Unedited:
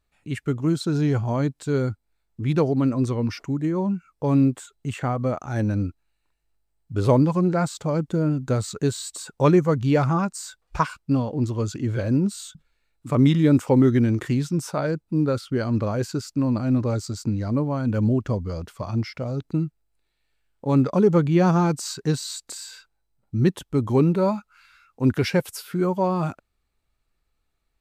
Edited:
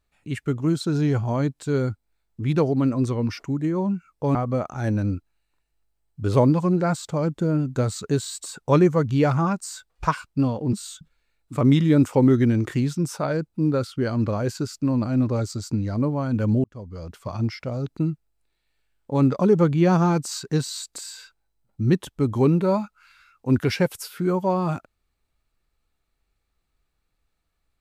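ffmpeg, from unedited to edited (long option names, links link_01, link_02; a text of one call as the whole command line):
ffmpeg -i in.wav -filter_complex "[0:a]asplit=4[link_01][link_02][link_03][link_04];[link_01]atrim=end=4.352[link_05];[link_02]atrim=start=5.068:end=11.452[link_06];[link_03]atrim=start=12.268:end=18.18,asetpts=PTS-STARTPTS,afade=type=out:start_time=5.908:duration=0.004:curve=hsin[link_07];[link_04]atrim=start=18.18,asetpts=PTS-STARTPTS,afade=type=in:duration=0.68[link_08];[link_05][link_06]acrossfade=duration=0.004:curve1=hsin:curve2=hsin[link_09];[link_07][link_08]concat=n=2:v=0:a=1[link_10];[link_09][link_10]acrossfade=duration=0.004:curve1=hsin:curve2=hsin" out.wav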